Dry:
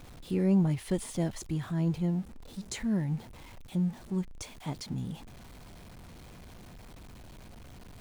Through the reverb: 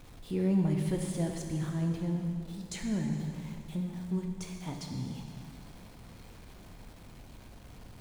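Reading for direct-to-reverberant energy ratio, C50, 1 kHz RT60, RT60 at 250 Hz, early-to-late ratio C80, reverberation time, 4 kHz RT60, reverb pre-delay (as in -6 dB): 1.5 dB, 3.5 dB, 2.6 s, 2.6 s, 4.5 dB, 2.5 s, 2.3 s, 4 ms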